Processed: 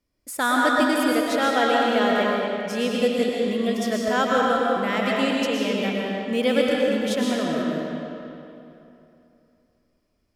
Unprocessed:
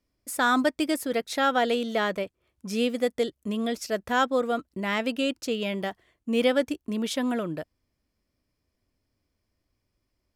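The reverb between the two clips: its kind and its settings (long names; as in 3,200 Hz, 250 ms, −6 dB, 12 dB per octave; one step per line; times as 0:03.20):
comb and all-pass reverb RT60 2.9 s, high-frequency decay 0.75×, pre-delay 80 ms, DRR −3.5 dB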